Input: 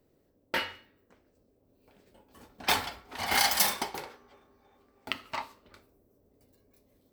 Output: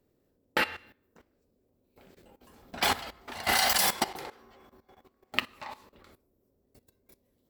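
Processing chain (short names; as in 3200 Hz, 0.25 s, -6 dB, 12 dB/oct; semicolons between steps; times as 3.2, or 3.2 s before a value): level quantiser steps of 16 dB; varispeed -5%; gain +7.5 dB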